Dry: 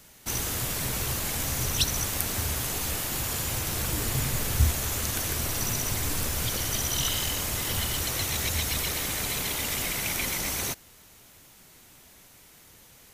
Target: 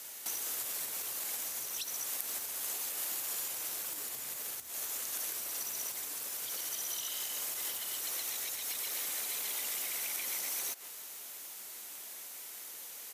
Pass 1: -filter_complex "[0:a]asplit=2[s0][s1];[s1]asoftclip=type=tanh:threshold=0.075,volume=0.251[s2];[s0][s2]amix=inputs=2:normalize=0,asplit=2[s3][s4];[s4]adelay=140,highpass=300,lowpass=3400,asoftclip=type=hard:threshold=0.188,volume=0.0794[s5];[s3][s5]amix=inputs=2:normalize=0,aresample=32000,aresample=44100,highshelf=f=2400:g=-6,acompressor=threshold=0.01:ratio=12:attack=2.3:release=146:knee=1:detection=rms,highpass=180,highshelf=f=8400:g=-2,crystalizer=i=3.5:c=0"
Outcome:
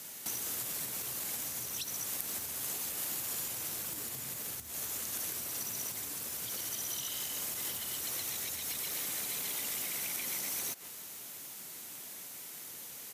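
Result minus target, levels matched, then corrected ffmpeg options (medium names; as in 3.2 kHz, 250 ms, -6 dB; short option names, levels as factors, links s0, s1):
250 Hz band +8.0 dB; saturation: distortion -6 dB
-filter_complex "[0:a]asplit=2[s0][s1];[s1]asoftclip=type=tanh:threshold=0.0316,volume=0.251[s2];[s0][s2]amix=inputs=2:normalize=0,asplit=2[s3][s4];[s4]adelay=140,highpass=300,lowpass=3400,asoftclip=type=hard:threshold=0.188,volume=0.0794[s5];[s3][s5]amix=inputs=2:normalize=0,aresample=32000,aresample=44100,highshelf=f=2400:g=-6,acompressor=threshold=0.01:ratio=12:attack=2.3:release=146:knee=1:detection=rms,highpass=430,highshelf=f=8400:g=-2,crystalizer=i=3.5:c=0"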